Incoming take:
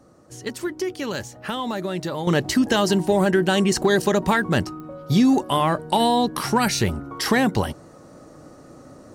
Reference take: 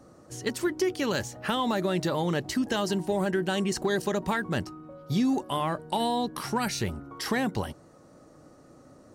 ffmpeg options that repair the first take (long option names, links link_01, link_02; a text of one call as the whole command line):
ffmpeg -i in.wav -af "adeclick=threshold=4,asetnsamples=nb_out_samples=441:pad=0,asendcmd='2.27 volume volume -8.5dB',volume=0dB" out.wav